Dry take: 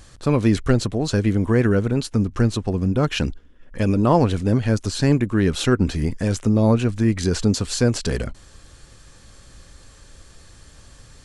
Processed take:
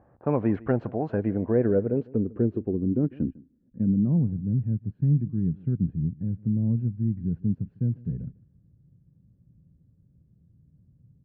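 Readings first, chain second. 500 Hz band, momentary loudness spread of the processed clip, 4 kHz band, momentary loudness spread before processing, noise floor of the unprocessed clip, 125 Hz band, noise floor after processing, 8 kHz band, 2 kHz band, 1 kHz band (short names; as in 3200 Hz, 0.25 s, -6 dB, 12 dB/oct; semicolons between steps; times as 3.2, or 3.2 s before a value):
-7.0 dB, 6 LU, under -40 dB, 6 LU, -48 dBFS, -5.5 dB, -63 dBFS, under -40 dB, under -15 dB, under -10 dB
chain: HPF 110 Hz 12 dB/oct; low-pass opened by the level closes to 1000 Hz, open at -18.5 dBFS; band shelf 2100 Hz +9.5 dB 1.2 oct; low-pass sweep 800 Hz -> 160 Hz, 1–4.37; air absorption 83 m; echo 0.151 s -22 dB; gain -7 dB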